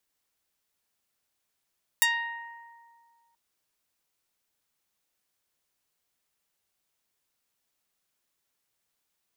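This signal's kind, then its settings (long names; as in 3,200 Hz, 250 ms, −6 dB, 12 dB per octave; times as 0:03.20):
Karplus-Strong string A#5, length 1.33 s, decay 2.10 s, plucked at 0.22, medium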